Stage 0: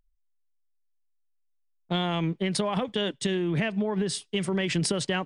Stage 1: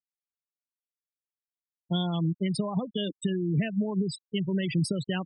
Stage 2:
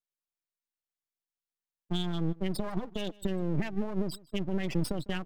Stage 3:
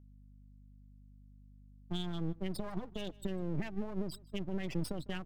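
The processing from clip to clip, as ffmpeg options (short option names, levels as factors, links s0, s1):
-filter_complex "[0:a]afftfilt=real='re*gte(hypot(re,im),0.0794)':imag='im*gte(hypot(re,im),0.0794)':win_size=1024:overlap=0.75,bass=f=250:g=9,treble=f=4000:g=14,acrossover=split=2500[s0][s1];[s1]alimiter=limit=0.112:level=0:latency=1:release=277[s2];[s0][s2]amix=inputs=2:normalize=0,volume=0.531"
-af "aeval=exprs='max(val(0),0)':c=same,aecho=1:1:152:0.0708"
-af "aeval=exprs='val(0)+0.00316*(sin(2*PI*50*n/s)+sin(2*PI*2*50*n/s)/2+sin(2*PI*3*50*n/s)/3+sin(2*PI*4*50*n/s)/4+sin(2*PI*5*50*n/s)/5)':c=same,volume=0.501"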